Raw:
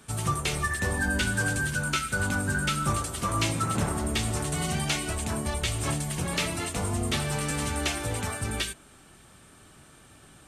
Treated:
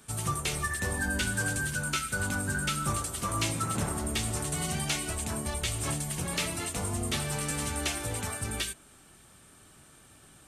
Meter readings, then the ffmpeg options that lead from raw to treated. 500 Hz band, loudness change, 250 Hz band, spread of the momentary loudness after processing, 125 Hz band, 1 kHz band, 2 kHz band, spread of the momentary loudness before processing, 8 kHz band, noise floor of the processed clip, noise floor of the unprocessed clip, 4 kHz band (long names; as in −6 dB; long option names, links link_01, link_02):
−4.0 dB, −2.5 dB, −4.0 dB, 3 LU, −4.0 dB, −4.0 dB, −3.5 dB, 4 LU, 0.0 dB, −56 dBFS, −54 dBFS, −2.5 dB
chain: -af "highshelf=frequency=6900:gain=7,volume=-4dB"